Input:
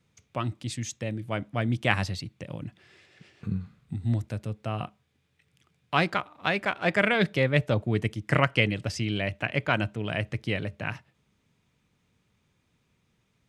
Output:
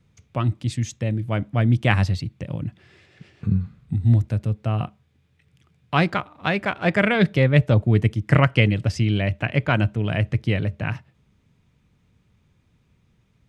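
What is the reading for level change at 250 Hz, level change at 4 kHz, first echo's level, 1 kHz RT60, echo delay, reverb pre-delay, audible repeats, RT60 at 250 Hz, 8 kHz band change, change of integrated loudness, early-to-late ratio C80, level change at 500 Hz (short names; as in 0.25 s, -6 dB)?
+7.5 dB, +1.5 dB, none, none, none, none, none, none, n/a, +6.5 dB, none, +4.0 dB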